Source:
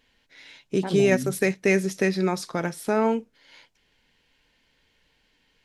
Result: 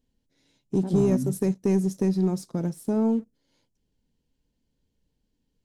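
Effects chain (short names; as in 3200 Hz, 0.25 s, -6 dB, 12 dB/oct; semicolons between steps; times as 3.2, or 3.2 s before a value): EQ curve 230 Hz 0 dB, 2100 Hz -26 dB, 7400 Hz -8 dB; sample leveller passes 1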